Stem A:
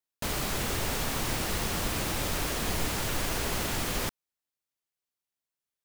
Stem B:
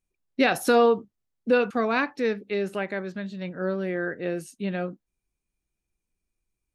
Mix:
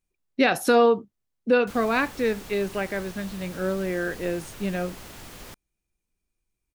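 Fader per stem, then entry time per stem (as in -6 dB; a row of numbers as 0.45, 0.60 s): -12.0, +1.0 dB; 1.45, 0.00 s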